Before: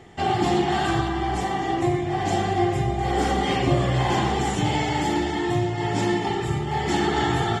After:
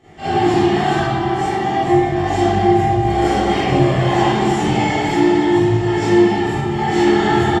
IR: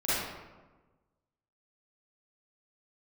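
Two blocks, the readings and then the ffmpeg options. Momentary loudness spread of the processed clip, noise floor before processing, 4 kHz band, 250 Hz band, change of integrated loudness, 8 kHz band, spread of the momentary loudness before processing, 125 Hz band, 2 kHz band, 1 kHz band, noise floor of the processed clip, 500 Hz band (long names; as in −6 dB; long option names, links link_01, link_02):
5 LU, −28 dBFS, +3.5 dB, +9.0 dB, +7.5 dB, +2.0 dB, 4 LU, +5.5 dB, +6.0 dB, +6.5 dB, −21 dBFS, +9.0 dB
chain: -filter_complex "[0:a]flanger=delay=19:depth=4.3:speed=0.35,aecho=1:1:1142:0.141[link_01];[1:a]atrim=start_sample=2205,asetrate=48510,aresample=44100[link_02];[link_01][link_02]afir=irnorm=-1:irlink=0,volume=-1dB"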